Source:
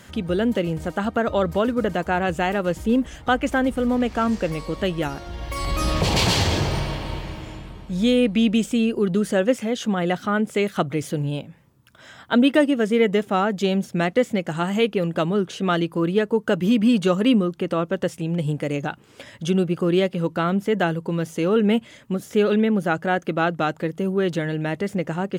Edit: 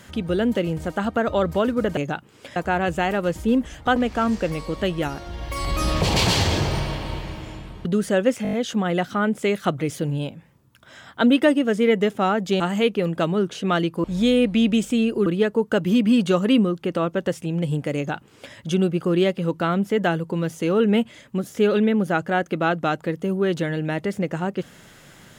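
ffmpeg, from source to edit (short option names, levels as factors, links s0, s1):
-filter_complex "[0:a]asplit=13[s0][s1][s2][s3][s4][s5][s6][s7][s8][s9][s10][s11][s12];[s0]atrim=end=1.972[s13];[s1]atrim=start=18.718:end=19.312[s14];[s2]atrim=start=1.968:end=3.372[s15];[s3]atrim=start=3.958:end=7.852[s16];[s4]atrim=start=9.068:end=9.672[s17];[s5]atrim=start=9.648:end=9.672[s18];[s6]atrim=start=9.648:end=9.672[s19];[s7]atrim=start=9.648:end=9.672[s20];[s8]atrim=start=9.648:end=9.672[s21];[s9]atrim=start=9.648:end=13.722[s22];[s10]atrim=start=14.578:end=16.022[s23];[s11]atrim=start=7.848:end=9.072[s24];[s12]atrim=start=16.018[s25];[s13][s14]acrossfade=d=0.004:c1=hsin:c2=hsin[s26];[s26][s15]acrossfade=d=0.004:c1=hsin:c2=hsin[s27];[s27][s16]acrossfade=d=0.004:c1=hsin:c2=hsin[s28];[s28][s17]acrossfade=d=0.004:c1=hsin:c2=hsin[s29];[s29][s18]acrossfade=d=0.004:c1=hsin:c2=hsin[s30];[s30][s19]acrossfade=d=0.004:c1=hsin:c2=hsin[s31];[s31][s20]acrossfade=d=0.004:c1=hsin:c2=hsin[s32];[s32][s21]acrossfade=d=0.004:c1=hsin:c2=hsin[s33];[s33][s22]acrossfade=d=0.004:c1=hsin:c2=hsin[s34];[s34][s23]acrossfade=d=0.004:c1=hsin:c2=hsin[s35];[s35][s24]acrossfade=d=0.004:c1=hsin:c2=hsin[s36];[s36][s25]acrossfade=d=0.004:c1=hsin:c2=hsin"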